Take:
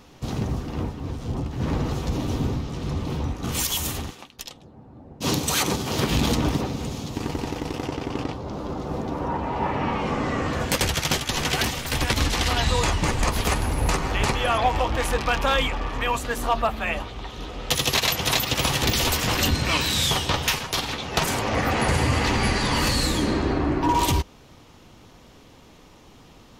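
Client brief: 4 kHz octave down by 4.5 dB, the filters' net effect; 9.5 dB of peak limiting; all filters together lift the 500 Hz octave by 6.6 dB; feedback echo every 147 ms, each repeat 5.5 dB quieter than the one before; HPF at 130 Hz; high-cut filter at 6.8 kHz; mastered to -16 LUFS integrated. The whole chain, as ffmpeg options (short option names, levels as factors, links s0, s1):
-af "highpass=130,lowpass=6800,equalizer=f=500:t=o:g=8,equalizer=f=4000:t=o:g=-5.5,alimiter=limit=0.15:level=0:latency=1,aecho=1:1:147|294|441|588|735|882|1029:0.531|0.281|0.149|0.079|0.0419|0.0222|0.0118,volume=2.99"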